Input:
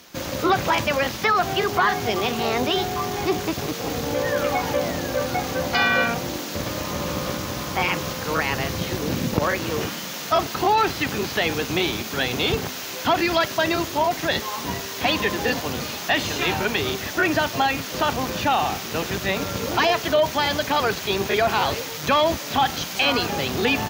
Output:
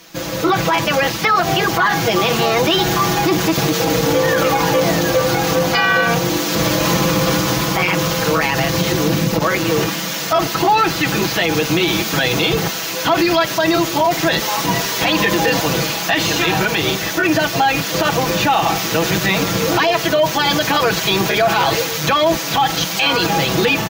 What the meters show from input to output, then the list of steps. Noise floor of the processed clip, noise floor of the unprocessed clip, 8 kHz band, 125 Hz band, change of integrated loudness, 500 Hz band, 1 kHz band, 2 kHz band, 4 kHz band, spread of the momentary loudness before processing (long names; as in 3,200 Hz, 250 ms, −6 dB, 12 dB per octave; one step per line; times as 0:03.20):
−23 dBFS, −32 dBFS, +9.5 dB, +9.0 dB, +7.0 dB, +6.5 dB, +5.5 dB, +6.5 dB, +7.5 dB, 7 LU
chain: comb filter 6.1 ms, depth 90%
automatic gain control
boost into a limiter +8 dB
level −5.5 dB